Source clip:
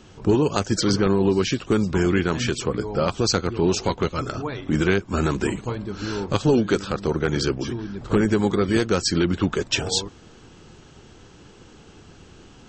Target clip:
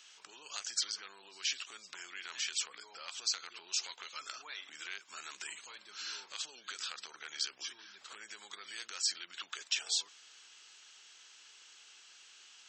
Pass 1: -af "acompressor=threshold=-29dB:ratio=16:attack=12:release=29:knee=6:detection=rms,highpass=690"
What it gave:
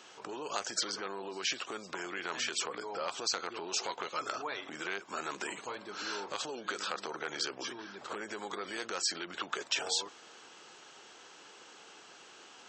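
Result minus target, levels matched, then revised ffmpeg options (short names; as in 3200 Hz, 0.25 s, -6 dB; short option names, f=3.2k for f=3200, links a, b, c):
500 Hz band +18.5 dB
-af "acompressor=threshold=-29dB:ratio=16:attack=12:release=29:knee=6:detection=rms,highpass=2.4k"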